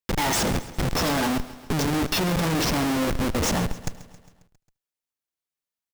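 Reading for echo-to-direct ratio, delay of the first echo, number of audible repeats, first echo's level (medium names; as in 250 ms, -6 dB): -14.5 dB, 75 ms, 5, -24.0 dB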